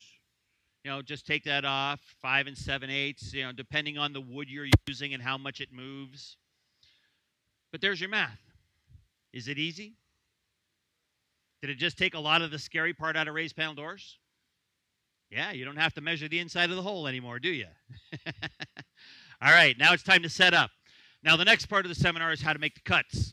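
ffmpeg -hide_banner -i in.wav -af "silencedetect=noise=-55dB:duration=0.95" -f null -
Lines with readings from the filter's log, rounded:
silence_start: 9.93
silence_end: 11.63 | silence_duration: 1.70
silence_start: 14.15
silence_end: 15.31 | silence_duration: 1.16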